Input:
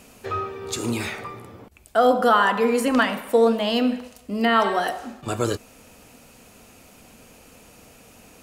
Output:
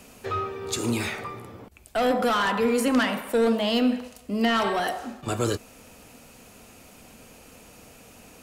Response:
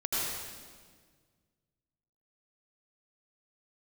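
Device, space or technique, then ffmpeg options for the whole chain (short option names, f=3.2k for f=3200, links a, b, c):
one-band saturation: -filter_complex "[0:a]acrossover=split=300|2900[a][b][c];[b]asoftclip=type=tanh:threshold=-21.5dB[d];[a][d][c]amix=inputs=3:normalize=0"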